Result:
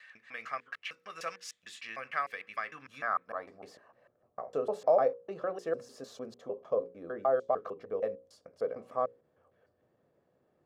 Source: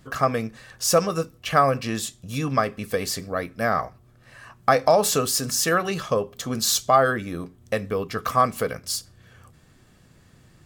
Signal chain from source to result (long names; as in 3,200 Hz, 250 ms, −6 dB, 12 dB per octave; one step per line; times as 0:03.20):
slices reordered back to front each 151 ms, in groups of 5
mains-hum notches 60/120/180/240/300/360/420/480/540 Hz
band-pass filter sweep 2,100 Hz → 530 Hz, 0:02.61–0:03.91
level −4.5 dB